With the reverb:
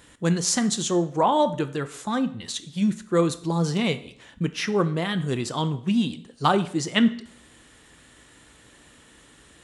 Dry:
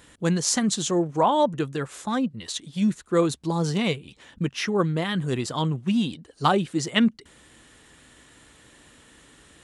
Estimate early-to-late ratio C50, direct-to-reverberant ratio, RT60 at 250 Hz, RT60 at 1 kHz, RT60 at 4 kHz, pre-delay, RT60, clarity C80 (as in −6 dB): 15.0 dB, 11.5 dB, 0.65 s, 0.60 s, 0.55 s, 17 ms, 0.60 s, 18.5 dB